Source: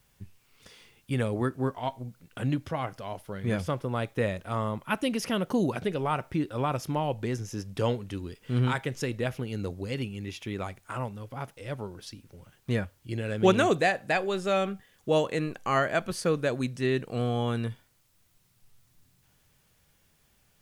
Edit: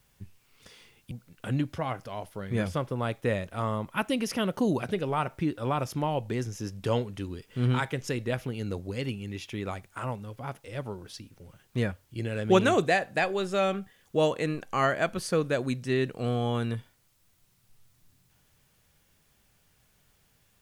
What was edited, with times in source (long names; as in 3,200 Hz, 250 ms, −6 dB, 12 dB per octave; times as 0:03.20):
0:01.11–0:02.04: remove